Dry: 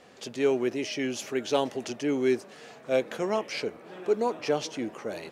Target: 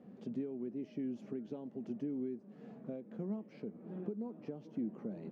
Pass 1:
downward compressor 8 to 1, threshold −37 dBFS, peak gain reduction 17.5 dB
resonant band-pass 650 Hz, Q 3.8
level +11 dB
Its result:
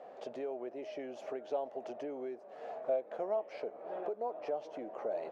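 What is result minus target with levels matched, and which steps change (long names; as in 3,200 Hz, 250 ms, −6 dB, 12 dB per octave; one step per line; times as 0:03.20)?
250 Hz band −12.0 dB
change: resonant band-pass 200 Hz, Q 3.8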